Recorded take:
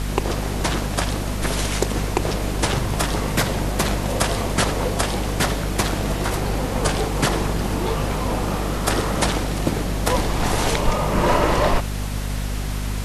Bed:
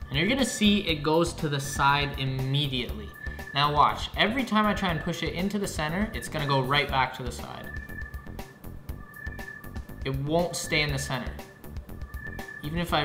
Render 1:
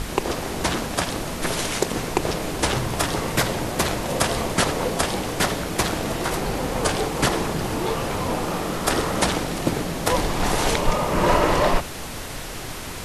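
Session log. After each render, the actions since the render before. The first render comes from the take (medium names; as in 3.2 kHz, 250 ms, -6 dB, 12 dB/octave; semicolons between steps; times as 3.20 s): hum notches 50/100/150/200/250 Hz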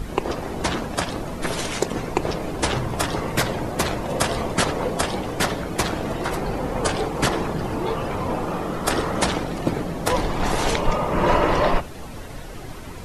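noise reduction 11 dB, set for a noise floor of -33 dBFS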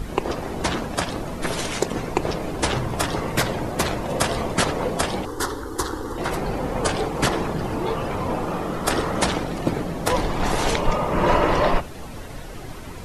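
5.25–6.18 s: static phaser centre 650 Hz, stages 6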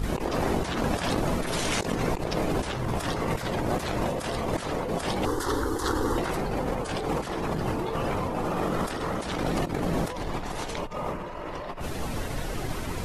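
compressor with a negative ratio -29 dBFS, ratio -1; attacks held to a fixed rise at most 120 dB/s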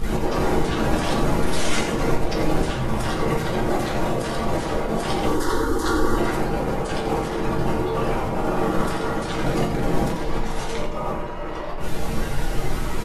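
delay 87 ms -9 dB; simulated room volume 32 m³, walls mixed, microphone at 0.59 m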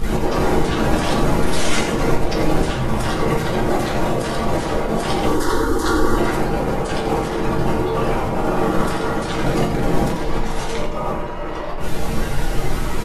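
trim +3.5 dB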